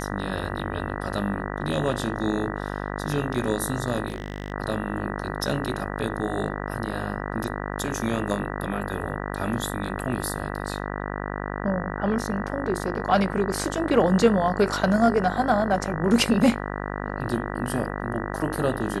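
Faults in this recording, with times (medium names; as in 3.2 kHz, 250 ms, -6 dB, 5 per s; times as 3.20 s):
buzz 50 Hz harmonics 39 -31 dBFS
4.08–4.52 s: clipped -25 dBFS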